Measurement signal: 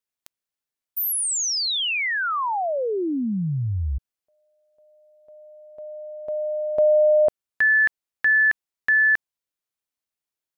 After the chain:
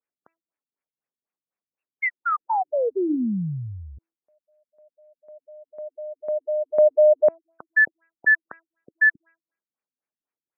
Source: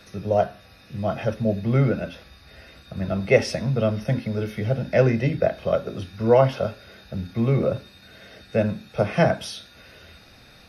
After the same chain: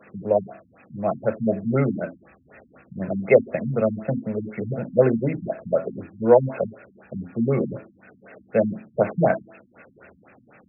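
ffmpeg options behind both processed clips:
ffmpeg -i in.wav -af "highpass=200,bandreject=frequency=329.4:width_type=h:width=4,bandreject=frequency=658.8:width_type=h:width=4,bandreject=frequency=988.2:width_type=h:width=4,bandreject=frequency=1317.6:width_type=h:width=4,bandreject=frequency=1647:width_type=h:width=4,bandreject=frequency=1976.4:width_type=h:width=4,bandreject=frequency=2305.8:width_type=h:width=4,bandreject=frequency=2635.2:width_type=h:width=4,bandreject=frequency=2964.6:width_type=h:width=4,bandreject=frequency=3294:width_type=h:width=4,bandreject=frequency=3623.4:width_type=h:width=4,bandreject=frequency=3952.8:width_type=h:width=4,bandreject=frequency=4282.2:width_type=h:width=4,bandreject=frequency=4611.6:width_type=h:width=4,bandreject=frequency=4941:width_type=h:width=4,bandreject=frequency=5270.4:width_type=h:width=4,bandreject=frequency=5599.8:width_type=h:width=4,bandreject=frequency=5929.2:width_type=h:width=4,bandreject=frequency=6258.6:width_type=h:width=4,bandreject=frequency=6588:width_type=h:width=4,bandreject=frequency=6917.4:width_type=h:width=4,bandreject=frequency=7246.8:width_type=h:width=4,bandreject=frequency=7576.2:width_type=h:width=4,bandreject=frequency=7905.6:width_type=h:width=4,bandreject=frequency=8235:width_type=h:width=4,bandreject=frequency=8564.4:width_type=h:width=4,bandreject=frequency=8893.8:width_type=h:width=4,bandreject=frequency=9223.2:width_type=h:width=4,bandreject=frequency=9552.6:width_type=h:width=4,bandreject=frequency=9882:width_type=h:width=4,afftfilt=real='re*lt(b*sr/1024,260*pow(2800/260,0.5+0.5*sin(2*PI*4*pts/sr)))':imag='im*lt(b*sr/1024,260*pow(2800/260,0.5+0.5*sin(2*PI*4*pts/sr)))':win_size=1024:overlap=0.75,volume=3dB" out.wav

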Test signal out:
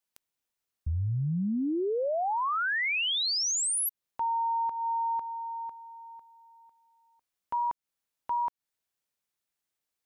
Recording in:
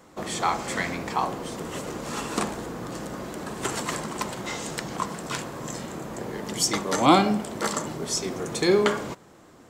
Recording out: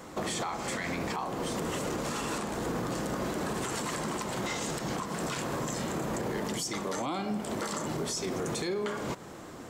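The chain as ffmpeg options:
ffmpeg -i in.wav -af "acompressor=threshold=-34dB:ratio=16,alimiter=level_in=7.5dB:limit=-24dB:level=0:latency=1:release=15,volume=-7.5dB,volume=7dB" out.wav

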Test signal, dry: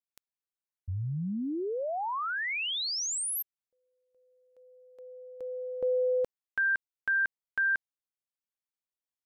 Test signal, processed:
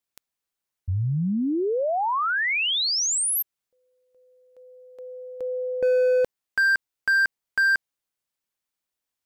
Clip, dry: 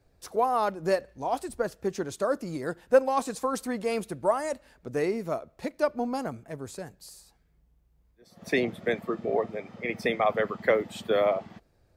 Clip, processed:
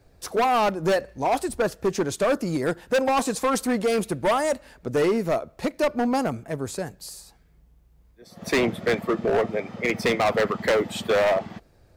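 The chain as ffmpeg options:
ffmpeg -i in.wav -af "asoftclip=type=hard:threshold=-26dB,volume=8.5dB" out.wav

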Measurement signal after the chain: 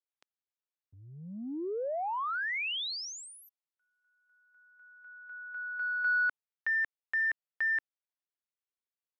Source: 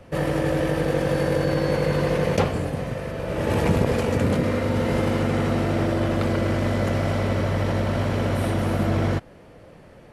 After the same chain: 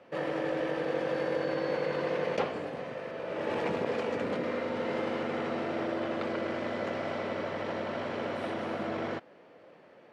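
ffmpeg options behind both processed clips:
ffmpeg -i in.wav -filter_complex "[0:a]asplit=2[link_01][link_02];[link_02]asoftclip=type=tanh:threshold=-24dB,volume=-9.5dB[link_03];[link_01][link_03]amix=inputs=2:normalize=0,highpass=310,lowpass=4000,volume=-8dB" out.wav

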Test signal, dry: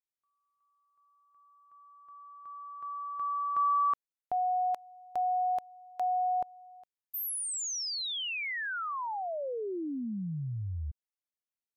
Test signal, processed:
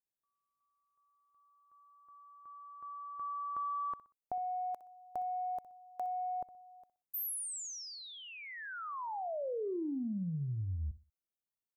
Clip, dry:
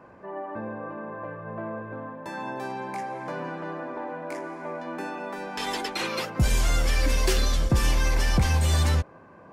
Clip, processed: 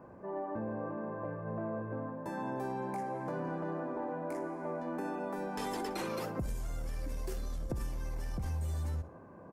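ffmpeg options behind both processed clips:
ffmpeg -i in.wav -filter_complex "[0:a]equalizer=frequency=3200:width=0.47:gain=-14.5,acompressor=threshold=-36dB:ratio=10:attack=20:release=28:knee=1:detection=rms,asplit=2[link_01][link_02];[link_02]aecho=0:1:62|124|186:0.158|0.0475|0.0143[link_03];[link_01][link_03]amix=inputs=2:normalize=0" out.wav

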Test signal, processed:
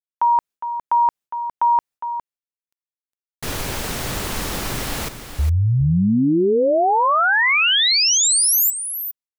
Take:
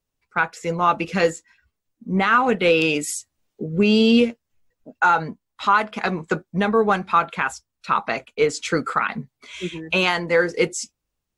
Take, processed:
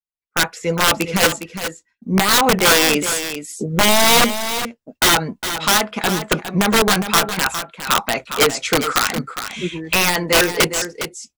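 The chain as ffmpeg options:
ffmpeg -i in.wav -af "aeval=exprs='(mod(3.98*val(0)+1,2)-1)/3.98':channel_layout=same,agate=range=-33dB:threshold=-40dB:ratio=3:detection=peak,aecho=1:1:409:0.316,volume=4.5dB" out.wav

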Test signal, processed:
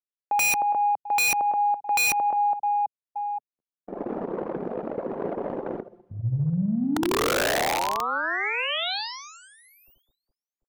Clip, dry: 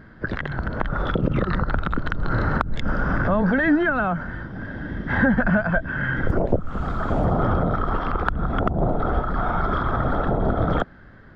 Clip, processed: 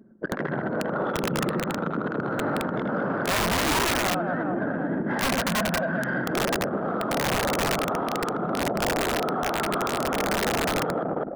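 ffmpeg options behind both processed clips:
ffmpeg -i in.wav -filter_complex "[0:a]highpass=frequency=150:width=0.5412,highpass=frequency=150:width=1.3066,asoftclip=type=tanh:threshold=-17dB,equalizer=frequency=500:width_type=o:width=2.6:gain=11,acrossover=split=3700[link_01][link_02];[link_02]acompressor=threshold=-39dB:ratio=4:attack=1:release=60[link_03];[link_01][link_03]amix=inputs=2:normalize=0,highshelf=frequency=2700:gain=-7,aecho=1:1:80|208|412.8|740.5|1265:0.631|0.398|0.251|0.158|0.1,anlmdn=158,aeval=exprs='(mod(2.82*val(0)+1,2)-1)/2.82':channel_layout=same,areverse,acompressor=threshold=-26dB:ratio=16,areverse,alimiter=level_in=2dB:limit=-24dB:level=0:latency=1:release=134,volume=-2dB,volume=7.5dB" out.wav

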